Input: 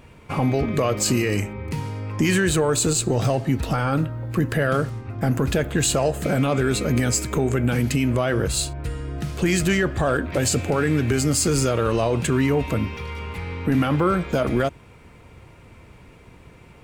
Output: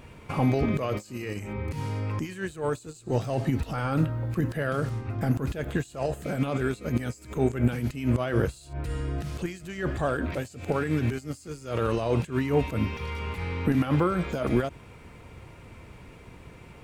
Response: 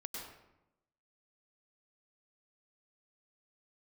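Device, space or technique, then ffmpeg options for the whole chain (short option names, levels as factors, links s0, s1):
de-esser from a sidechain: -filter_complex "[0:a]asplit=2[s0][s1];[s1]highpass=5100,apad=whole_len=742539[s2];[s0][s2]sidechaincompress=threshold=0.00398:ratio=16:attack=2.3:release=77"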